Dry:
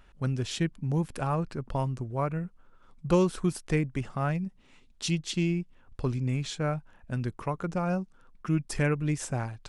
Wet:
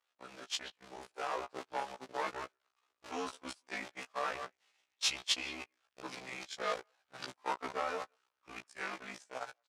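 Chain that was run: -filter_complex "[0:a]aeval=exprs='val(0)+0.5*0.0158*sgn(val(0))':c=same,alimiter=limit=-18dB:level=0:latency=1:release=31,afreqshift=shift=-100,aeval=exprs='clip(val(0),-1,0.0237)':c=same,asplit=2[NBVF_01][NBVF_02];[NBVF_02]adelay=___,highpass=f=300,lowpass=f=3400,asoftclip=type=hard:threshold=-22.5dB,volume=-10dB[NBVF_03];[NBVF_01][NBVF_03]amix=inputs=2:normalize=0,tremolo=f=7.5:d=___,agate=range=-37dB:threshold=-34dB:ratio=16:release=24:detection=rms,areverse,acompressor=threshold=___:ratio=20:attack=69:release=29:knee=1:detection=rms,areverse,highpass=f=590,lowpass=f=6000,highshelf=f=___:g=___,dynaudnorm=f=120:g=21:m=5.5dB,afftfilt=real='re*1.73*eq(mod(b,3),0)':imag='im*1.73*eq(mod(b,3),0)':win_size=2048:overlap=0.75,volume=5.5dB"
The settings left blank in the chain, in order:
180, 0.32, -40dB, 4200, 6.5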